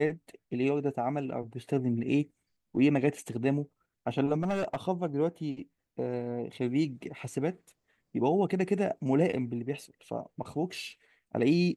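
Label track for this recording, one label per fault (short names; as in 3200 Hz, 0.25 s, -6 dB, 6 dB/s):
4.420000	4.770000	clipped -25.5 dBFS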